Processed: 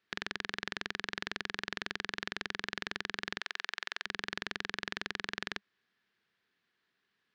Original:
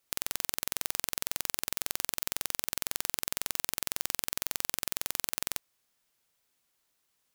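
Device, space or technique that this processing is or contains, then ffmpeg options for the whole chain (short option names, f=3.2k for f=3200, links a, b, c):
guitar cabinet: -filter_complex "[0:a]highpass=95,equalizer=f=200:t=q:w=4:g=8,equalizer=f=400:t=q:w=4:g=6,equalizer=f=580:t=q:w=4:g=-8,equalizer=f=860:t=q:w=4:g=-4,equalizer=f=1.7k:t=q:w=4:g=10,lowpass=f=4.2k:w=0.5412,lowpass=f=4.2k:w=1.3066,asettb=1/sr,asplit=3[a][b][c];[a]atrim=end=3.404[d];[b]atrim=start=3.4:end=4.06,asetpts=PTS-STARTPTS,afade=t=in:d=0.004:c=qsin,afade=t=out:st=0.656:d=0.004:c=qsin,highpass=710[e];[c]atrim=start=4.056[f];[d][e]acrossfade=d=0.004:c1=hsin:c2=qsin[g];[g][f]acrossfade=d=0.004:c1=qsin:c2=hsin"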